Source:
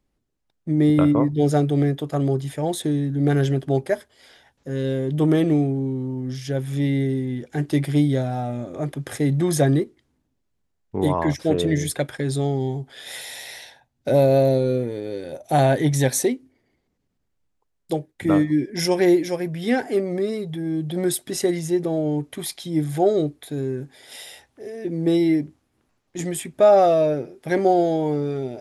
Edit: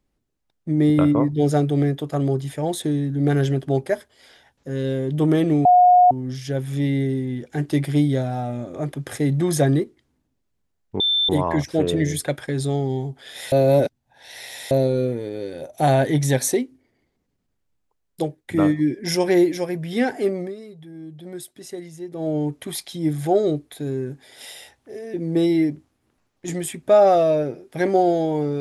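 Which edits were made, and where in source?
5.65–6.11 s: bleep 721 Hz -9 dBFS
11.00 s: add tone 3.55 kHz -16.5 dBFS 0.29 s
13.23–14.42 s: reverse
20.07–22.01 s: dip -12.5 dB, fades 0.18 s

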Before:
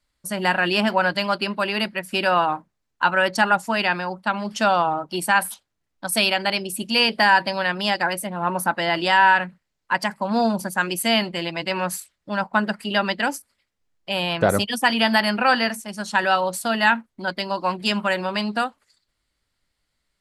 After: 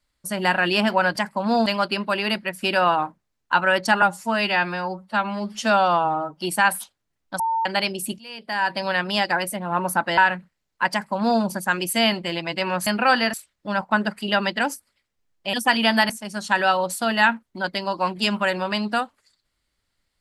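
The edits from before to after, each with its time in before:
3.52–5.11 s: stretch 1.5×
6.10–6.36 s: bleep 903 Hz -19.5 dBFS
6.89–7.57 s: fade in quadratic, from -23 dB
8.88–9.27 s: delete
10.01–10.51 s: copy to 1.16 s
14.16–14.70 s: delete
15.26–15.73 s: move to 11.96 s

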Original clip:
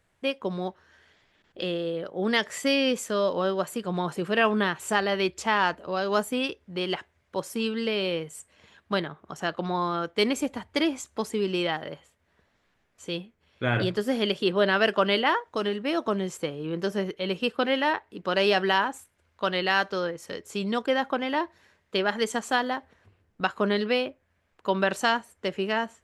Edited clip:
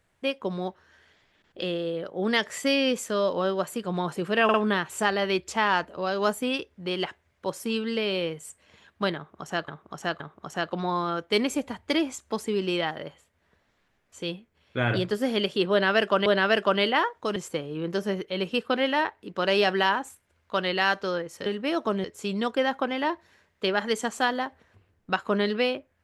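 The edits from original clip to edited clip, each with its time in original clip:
4.44 s: stutter 0.05 s, 3 plays
9.06–9.58 s: loop, 3 plays
14.57–15.12 s: loop, 2 plays
15.67–16.25 s: move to 20.35 s

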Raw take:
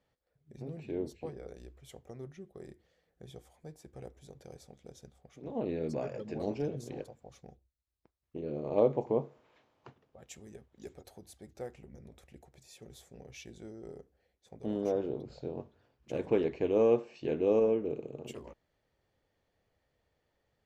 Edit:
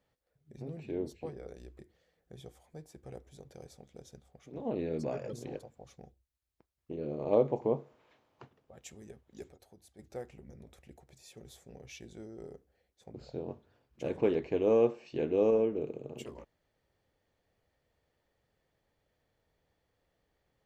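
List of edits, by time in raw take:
1.79–2.69 s: delete
6.23–6.78 s: delete
10.97–11.44 s: gain -7 dB
14.59–15.23 s: delete

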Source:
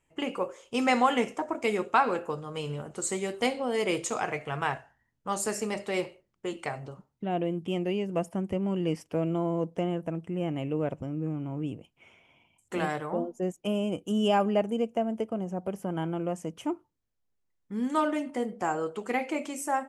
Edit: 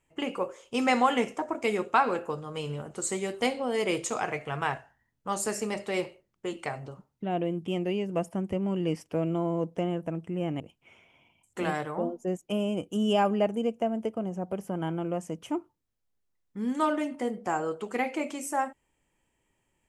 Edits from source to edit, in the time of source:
10.60–11.75 s: delete

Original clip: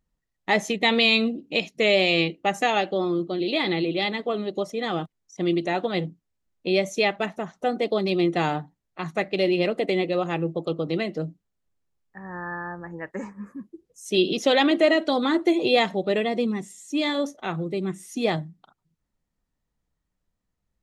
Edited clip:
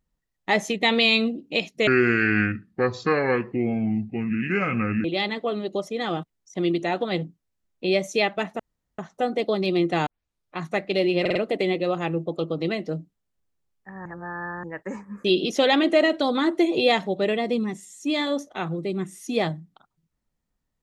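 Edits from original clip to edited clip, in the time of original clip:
1.87–3.87 s: speed 63%
7.42 s: insert room tone 0.39 s
8.50 s: tape start 0.51 s
9.64 s: stutter 0.05 s, 4 plays
12.34–12.92 s: reverse
13.53–14.12 s: delete

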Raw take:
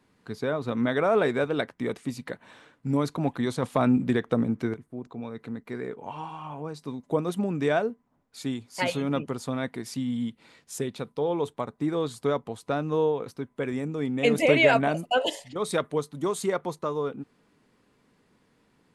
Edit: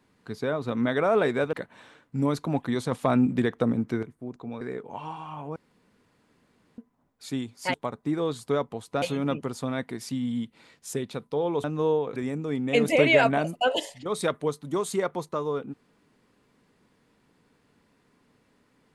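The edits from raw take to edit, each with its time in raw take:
1.53–2.24 s: delete
5.32–5.74 s: delete
6.69–7.91 s: room tone
11.49–12.77 s: move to 8.87 s
13.29–13.66 s: delete

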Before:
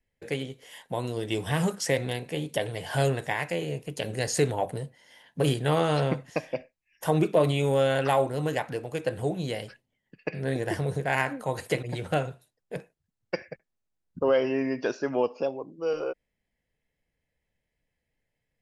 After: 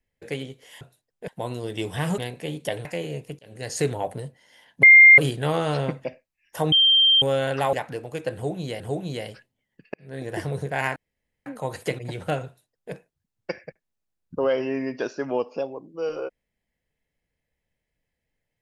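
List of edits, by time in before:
1.71–2.07 s: delete
2.74–3.43 s: delete
3.97–4.40 s: fade in
5.41 s: add tone 2.11 kHz -6.5 dBFS 0.35 s
6.27–6.52 s: delete
7.20–7.70 s: bleep 3.16 kHz -13.5 dBFS
8.21–8.53 s: delete
9.14–9.60 s: loop, 2 plays
10.28–10.75 s: fade in
11.30 s: insert room tone 0.50 s
12.30–12.77 s: copy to 0.81 s

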